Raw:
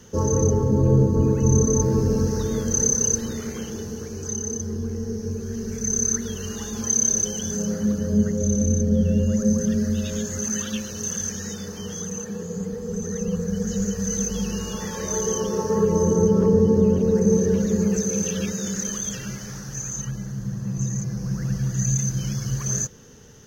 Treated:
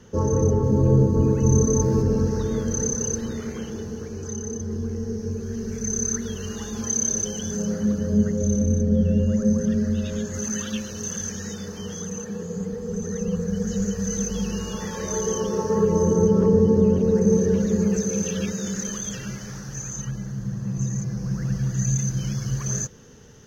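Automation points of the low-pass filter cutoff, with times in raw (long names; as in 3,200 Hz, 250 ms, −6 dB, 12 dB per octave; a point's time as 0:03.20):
low-pass filter 6 dB per octave
2,800 Hz
from 0:00.64 7,200 Hz
from 0:02.02 3,100 Hz
from 0:04.71 5,200 Hz
from 0:08.59 2,800 Hz
from 0:10.34 5,900 Hz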